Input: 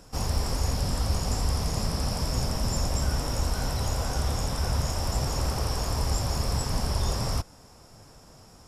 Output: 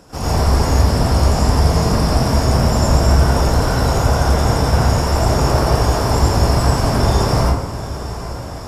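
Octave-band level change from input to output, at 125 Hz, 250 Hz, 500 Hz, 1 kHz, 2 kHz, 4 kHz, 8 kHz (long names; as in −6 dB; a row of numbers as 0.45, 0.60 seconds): +13.5, +15.5, +16.5, +15.5, +14.0, +8.5, +7.5 decibels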